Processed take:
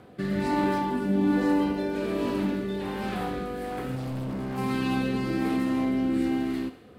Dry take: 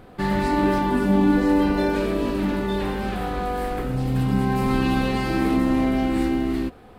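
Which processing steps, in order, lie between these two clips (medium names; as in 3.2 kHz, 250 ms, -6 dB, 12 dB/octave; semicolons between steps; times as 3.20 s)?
high-pass 98 Hz 12 dB/octave; in parallel at 0 dB: compression, threshold -28 dBFS, peak gain reduction 13.5 dB; on the sum: rotary cabinet horn 1.2 Hz; 3.95–4.58 s: overload inside the chain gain 24 dB; on a send: thinning echo 66 ms, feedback 63%, level -13 dB; on the sum: trim -6 dB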